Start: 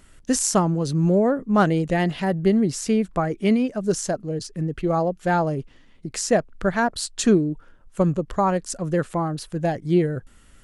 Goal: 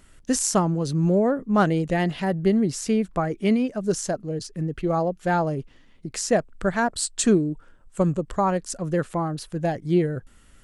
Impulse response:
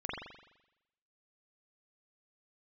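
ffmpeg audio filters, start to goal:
-filter_complex "[0:a]asettb=1/sr,asplit=3[a][b][c];[a]atrim=end=6.364[d];[b]atrim=start=6.36:end=8.37,asetpts=PTS-STARTPTS,afade=t=in:d=0.004:c=qsin,afade=t=out:st=2.006:d=0.004:c=qsin,equalizer=f=8k:w=4.9:g=9.5[e];[c]atrim=start=8.366[f];[d][e]acrossfade=d=0.004:c1=hsin:c2=qsin[g];[g][f]acrossfade=d=0.004:c1=qsin:c2=hsin,volume=-1.5dB"

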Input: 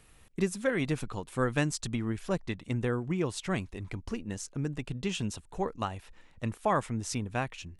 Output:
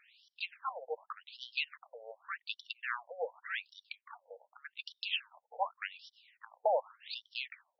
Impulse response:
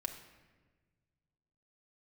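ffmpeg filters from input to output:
-af "aeval=exprs='0.266*(cos(1*acos(clip(val(0)/0.266,-1,1)))-cos(1*PI/2))+0.0531*(cos(2*acos(clip(val(0)/0.266,-1,1)))-cos(2*PI/2))+0.0299*(cos(6*acos(clip(val(0)/0.266,-1,1)))-cos(6*PI/2))':c=same,aemphasis=mode=production:type=75fm,afftfilt=real='re*between(b*sr/1024,610*pow(4200/610,0.5+0.5*sin(2*PI*0.86*pts/sr))/1.41,610*pow(4200/610,0.5+0.5*sin(2*PI*0.86*pts/sr))*1.41)':imag='im*between(b*sr/1024,610*pow(4200/610,0.5+0.5*sin(2*PI*0.86*pts/sr))/1.41,610*pow(4200/610,0.5+0.5*sin(2*PI*0.86*pts/sr))*1.41)':win_size=1024:overlap=0.75,volume=1.5dB"

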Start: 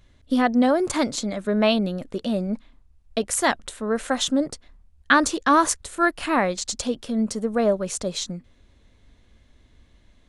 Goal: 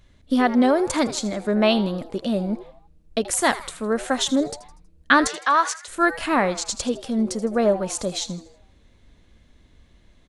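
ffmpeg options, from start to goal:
-filter_complex "[0:a]asettb=1/sr,asplit=3[a][b][c];[a]atrim=end=5.274[d];[b]atrim=start=5.27:end=5.88,asetpts=PTS-STARTPTS,afade=t=in:d=0.004:c=qsin,afade=t=out:st=0.606:d=0.004:c=qsin,highpass=770,lowpass=5.6k[e];[c]atrim=start=5.876[f];[d][e]acrossfade=d=0.004:c1=hsin:c2=qsin[g];[g][f]acrossfade=d=0.004:c1=qsin:c2=hsin,asplit=5[h][i][j][k][l];[i]adelay=80,afreqshift=150,volume=-16dB[m];[j]adelay=160,afreqshift=300,volume=-23.1dB[n];[k]adelay=240,afreqshift=450,volume=-30.3dB[o];[l]adelay=320,afreqshift=600,volume=-37.4dB[p];[h][m][n][o][p]amix=inputs=5:normalize=0,volume=1dB"

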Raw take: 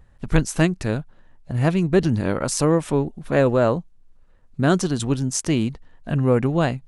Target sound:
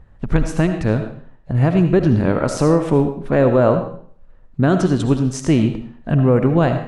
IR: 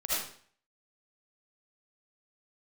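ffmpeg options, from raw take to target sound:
-filter_complex "[0:a]lowpass=f=1.7k:p=1,alimiter=limit=-10dB:level=0:latency=1:release=118,asplit=2[a][b];[1:a]atrim=start_sample=2205[c];[b][c]afir=irnorm=-1:irlink=0,volume=-12dB[d];[a][d]amix=inputs=2:normalize=0,volume=4.5dB"

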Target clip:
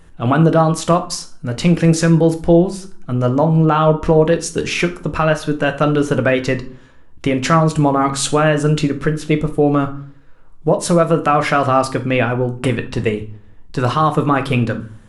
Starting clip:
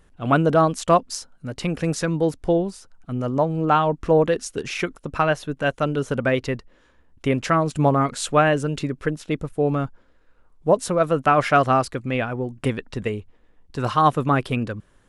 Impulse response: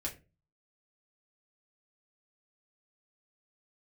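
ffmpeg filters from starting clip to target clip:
-filter_complex "[0:a]alimiter=limit=-14dB:level=0:latency=1:release=134,asplit=2[a][b];[1:a]atrim=start_sample=2205,asetrate=23814,aresample=44100[c];[b][c]afir=irnorm=-1:irlink=0,volume=-6.5dB[d];[a][d]amix=inputs=2:normalize=0,volume=5dB"

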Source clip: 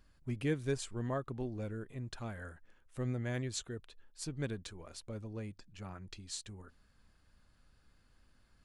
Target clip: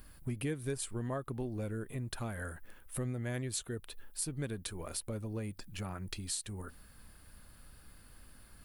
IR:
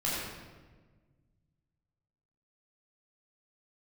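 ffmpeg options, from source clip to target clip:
-af "aexciter=amount=8.6:drive=1.7:freq=9.1k,acompressor=threshold=-48dB:ratio=3,volume=10.5dB" -ar 48000 -c:a aac -b:a 192k

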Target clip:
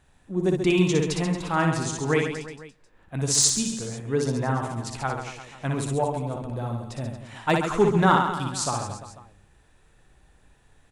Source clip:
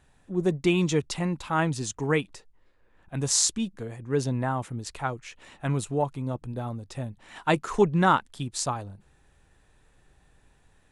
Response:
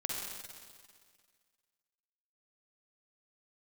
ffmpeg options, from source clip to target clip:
-filter_complex "[0:a]asoftclip=type=hard:threshold=-10.5dB,aecho=1:1:60|135|228.8|345.9|492.4:0.631|0.398|0.251|0.158|0.1,asplit=2[a][b];[1:a]atrim=start_sample=2205,afade=t=out:st=0.31:d=0.01,atrim=end_sample=14112[c];[b][c]afir=irnorm=-1:irlink=0,volume=-23.5dB[d];[a][d]amix=inputs=2:normalize=0"

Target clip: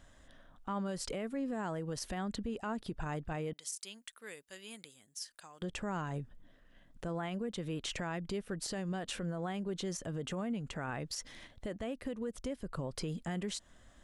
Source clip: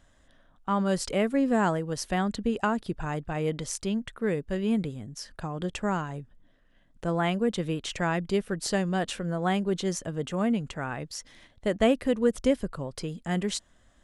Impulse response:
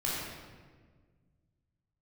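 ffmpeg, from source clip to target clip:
-filter_complex "[0:a]asettb=1/sr,asplit=3[a][b][c];[a]atrim=end=3.534[d];[b]atrim=start=3.53:end=5.62,asetpts=PTS-STARTPTS,afade=t=in:d=0.004:c=qsin,afade=t=out:st=2.086:d=0.004:c=qsin,aderivative[e];[c]atrim=start=5.616[f];[d][e]acrossfade=d=0.004:c1=hsin:c2=qsin[g];[g][f]acrossfade=d=0.004:c1=qsin:c2=hsin,acompressor=threshold=-33dB:ratio=16,alimiter=level_in=7dB:limit=-24dB:level=0:latency=1:release=33,volume=-7dB,volume=1.5dB"

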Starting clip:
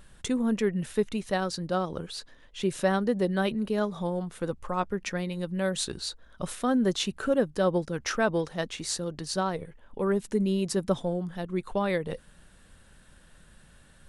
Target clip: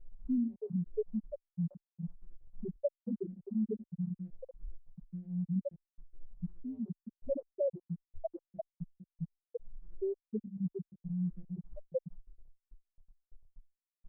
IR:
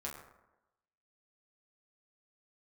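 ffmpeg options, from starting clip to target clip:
-filter_complex "[0:a]acompressor=threshold=-33dB:ratio=12,lowpass=f=1.3k:w=0.5412,lowpass=f=1.3k:w=1.3066,lowshelf=f=160:g=7.5,asoftclip=type=tanh:threshold=-39dB,bandreject=f=50:t=h:w=6,bandreject=f=100:t=h:w=6,bandreject=f=150:t=h:w=6,bandreject=f=200:t=h:w=6,agate=range=-33dB:threshold=-46dB:ratio=3:detection=peak,asplit=2[a][b];[b]aecho=0:1:114|228:0.0631|0.0139[c];[a][c]amix=inputs=2:normalize=0,afftfilt=real='re*gte(hypot(re,im),0.0794)':imag='im*gte(hypot(re,im),0.0794)':win_size=1024:overlap=0.75,equalizer=f=870:t=o:w=2.8:g=8,asplit=2[d][e];[e]afreqshift=2.1[f];[d][f]amix=inputs=2:normalize=1,volume=11dB"

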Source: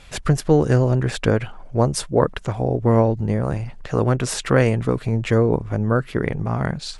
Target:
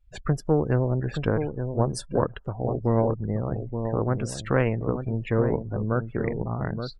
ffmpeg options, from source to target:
-filter_complex "[0:a]aeval=exprs='0.794*(cos(1*acos(clip(val(0)/0.794,-1,1)))-cos(1*PI/2))+0.0631*(cos(3*acos(clip(val(0)/0.794,-1,1)))-cos(3*PI/2))+0.0251*(cos(4*acos(clip(val(0)/0.794,-1,1)))-cos(4*PI/2))':c=same,asplit=2[a][b];[b]adelay=874.6,volume=-7dB,highshelf=f=4k:g=-19.7[c];[a][c]amix=inputs=2:normalize=0,afftdn=nr=34:nf=-32,volume=-5dB"

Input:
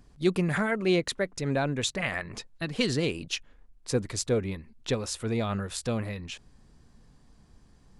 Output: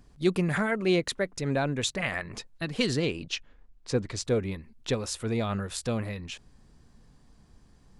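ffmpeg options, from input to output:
-filter_complex "[0:a]asettb=1/sr,asplit=3[a][b][c];[a]atrim=end=2.994[d];[b]atrim=start=2.99:end=4.25,asetpts=PTS-STARTPTS,afade=t=in:d=0.004:c=qsin,afade=t=out:st=1.256:d=0.004:c=qsin,lowpass=6.1k[e];[c]atrim=start=4.246[f];[d][e]acrossfade=d=0.004:c1=hsin:c2=qsin[g];[g][f]acrossfade=d=0.004:c1=qsin:c2=hsin"

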